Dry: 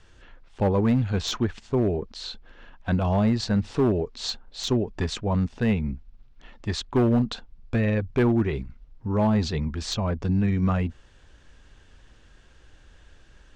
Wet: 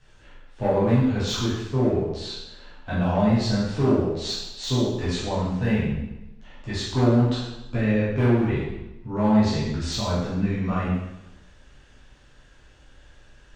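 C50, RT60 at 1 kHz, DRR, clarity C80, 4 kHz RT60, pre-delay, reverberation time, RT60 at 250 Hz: 0.0 dB, 0.95 s, −10.0 dB, 3.0 dB, 0.90 s, 5 ms, 0.95 s, 1.0 s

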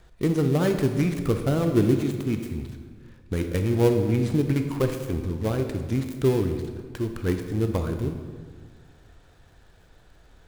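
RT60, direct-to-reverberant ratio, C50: 1.7 s, 5.5 dB, 7.0 dB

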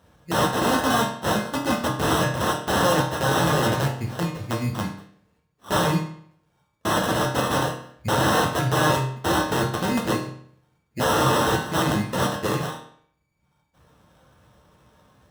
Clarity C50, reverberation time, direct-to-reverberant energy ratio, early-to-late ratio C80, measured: 5.5 dB, 0.60 s, −3.5 dB, 9.0 dB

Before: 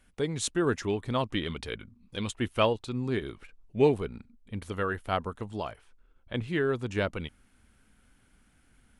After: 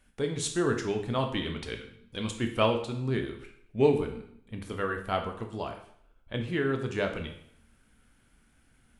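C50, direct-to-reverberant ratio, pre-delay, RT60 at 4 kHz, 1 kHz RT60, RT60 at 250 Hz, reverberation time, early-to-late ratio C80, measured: 8.5 dB, 4.0 dB, 7 ms, 0.60 s, 0.65 s, 0.65 s, 0.65 s, 12.0 dB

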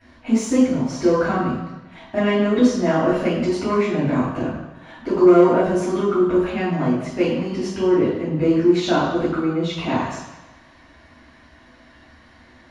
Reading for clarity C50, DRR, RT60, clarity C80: 1.0 dB, −10.5 dB, 1.1 s, 4.5 dB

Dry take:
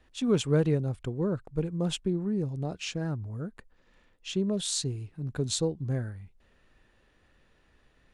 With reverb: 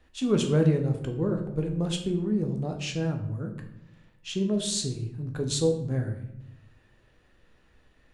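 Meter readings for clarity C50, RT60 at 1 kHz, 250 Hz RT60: 8.5 dB, 0.75 s, 1.2 s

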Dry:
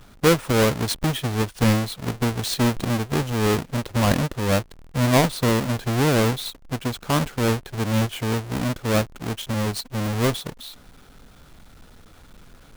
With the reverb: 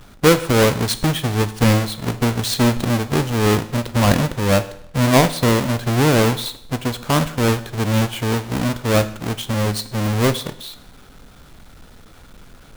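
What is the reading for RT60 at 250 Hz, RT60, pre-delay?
0.70 s, 0.70 s, 14 ms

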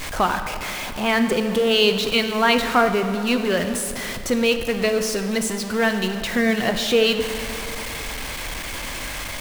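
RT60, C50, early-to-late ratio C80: 2.6 s, 8.0 dB, 9.0 dB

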